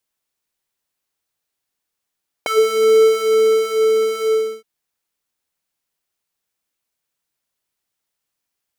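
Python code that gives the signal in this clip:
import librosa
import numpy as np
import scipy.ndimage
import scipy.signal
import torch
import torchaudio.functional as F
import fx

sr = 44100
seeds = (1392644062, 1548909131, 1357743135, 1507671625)

y = fx.sub_patch_wobble(sr, seeds[0], note=69, wave='triangle', wave2='square', interval_st=0, level2_db=-2.5, sub_db=-22.0, noise_db=-28.5, kind='highpass', cutoff_hz=290.0, q=2.3, env_oct=3.0, env_decay_s=0.12, env_sustain_pct=10, attack_ms=2.2, decay_s=1.43, sustain_db=-5, release_s=0.37, note_s=1.8, lfo_hz=1.8, wobble_oct=0.3)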